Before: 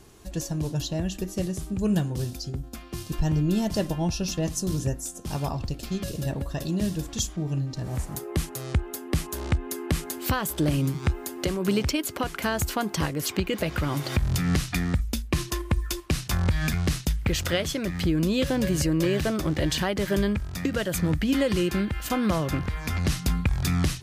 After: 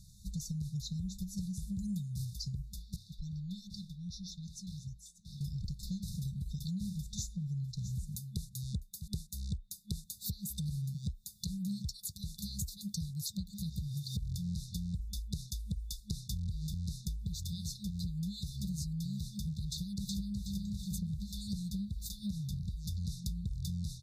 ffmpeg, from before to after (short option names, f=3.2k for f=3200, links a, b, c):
-filter_complex "[0:a]asettb=1/sr,asplit=3[a][b][c];[a]atrim=end=1.674[d];[b]atrim=start=1.67:end=2.25,asetpts=PTS-STARTPTS,afade=t=in:d=0.004:c=qsin,afade=t=out:st=0.576:d=0.004:c=qsin,highshelf=f=7.1k:g=6.5[e];[c]atrim=start=2.246[f];[d][e]acrossfade=d=0.004:c1=hsin:c2=qsin[g];[g][f]acrossfade=d=0.004:c1=qsin:c2=hsin,asettb=1/sr,asplit=3[h][i][j];[h]atrim=end=2.964[k];[i]atrim=start=2.96:end=5.41,asetpts=PTS-STARTPTS,afade=t=in:d=0.004:c=qsin,afade=t=out:st=2.446:d=0.004:c=qsin,acrossover=split=450 3800:gain=0.178 1 0.112[l][m][n];[l][m][n]amix=inputs=3:normalize=0[o];[j]atrim=start=5.406[p];[k][o]acrossfade=d=0.004:c1=hsin:c2=qsin[q];[q][p]acrossfade=d=0.004:c1=qsin:c2=hsin,asettb=1/sr,asplit=3[r][s][t];[r]atrim=end=6.974[u];[s]atrim=start=6.97:end=9.08,asetpts=PTS-STARTPTS,afade=t=in:d=0.004:c=qsin,afade=t=out:st=2.106:d=0.004:c=qsin,aecho=1:1:652:0.168,atrim=end_sample=93051[v];[t]atrim=start=9.076[w];[u][v]acrossfade=d=0.004:c1=hsin:c2=qsin[x];[x][w]acrossfade=d=0.004:c1=qsin:c2=hsin,asplit=2[y][z];[z]afade=t=in:st=19.71:d=0.01,afade=t=out:st=20.45:d=0.01,aecho=0:1:370|740|1110|1480|1850|2220:0.749894|0.337452|0.151854|0.0683341|0.0307503|0.0138377[aa];[y][aa]amix=inputs=2:normalize=0,afftfilt=real='re*(1-between(b*sr/4096,210,3500))':imag='im*(1-between(b*sr/4096,210,3500))':win_size=4096:overlap=0.75,highshelf=f=6.4k:g=-5,acompressor=threshold=-34dB:ratio=5,volume=-1.5dB"